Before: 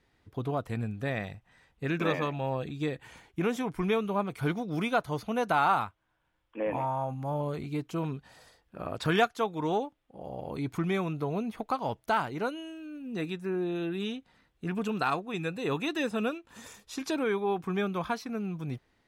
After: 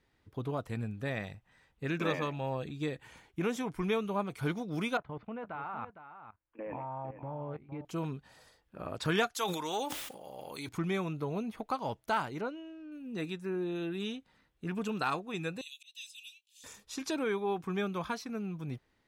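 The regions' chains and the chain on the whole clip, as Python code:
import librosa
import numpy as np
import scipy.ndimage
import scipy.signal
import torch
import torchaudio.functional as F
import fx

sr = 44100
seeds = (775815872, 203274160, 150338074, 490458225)

y = fx.chain(x, sr, fx.lowpass(hz=2500.0, slope=24),
    fx.level_steps(step_db=18),
    fx.echo_single(ms=459, db=-11.0), at=(4.97, 7.85))
y = fx.chain(y, sr, fx.tilt_eq(slope=4.0),
    fx.sustainer(db_per_s=43.0), at=(9.34, 10.69))
y = fx.chain(y, sr, fx.backlash(play_db=-55.0),
    fx.spacing_loss(db_at_10k=22), at=(12.41, 12.92))
y = fx.chain(y, sr, fx.steep_highpass(hz=2800.0, slope=48),
    fx.auto_swell(attack_ms=238.0), at=(15.61, 16.64))
y = fx.notch(y, sr, hz=710.0, q=19.0)
y = fx.dynamic_eq(y, sr, hz=6600.0, q=0.8, threshold_db=-53.0, ratio=4.0, max_db=4)
y = F.gain(torch.from_numpy(y), -3.5).numpy()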